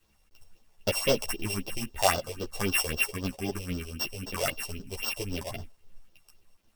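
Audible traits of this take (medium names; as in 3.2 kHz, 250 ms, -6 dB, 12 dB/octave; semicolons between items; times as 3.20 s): a buzz of ramps at a fixed pitch in blocks of 16 samples; phasing stages 4, 3.8 Hz, lowest notch 230–2300 Hz; a quantiser's noise floor 12-bit, dither none; a shimmering, thickened sound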